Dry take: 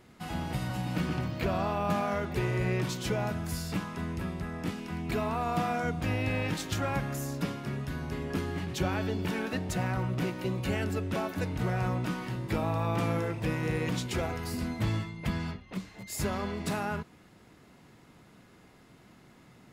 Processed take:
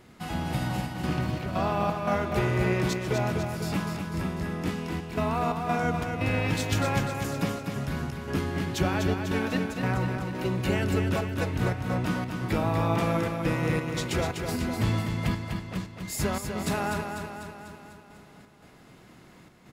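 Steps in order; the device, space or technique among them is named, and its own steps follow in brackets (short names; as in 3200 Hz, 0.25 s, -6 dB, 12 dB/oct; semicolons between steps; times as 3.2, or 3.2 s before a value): trance gate with a delay (step gate "xxxxx.xx.xx." 87 bpm -12 dB; feedback echo 0.248 s, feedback 58%, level -6 dB); gain +3.5 dB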